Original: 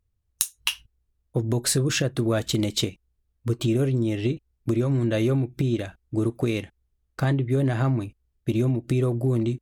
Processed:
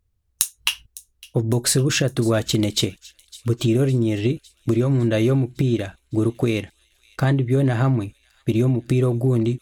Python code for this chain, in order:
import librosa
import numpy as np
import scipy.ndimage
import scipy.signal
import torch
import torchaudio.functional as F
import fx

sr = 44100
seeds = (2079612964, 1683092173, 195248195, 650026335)

y = fx.echo_wet_highpass(x, sr, ms=557, feedback_pct=61, hz=3300.0, wet_db=-18.5)
y = F.gain(torch.from_numpy(y), 4.0).numpy()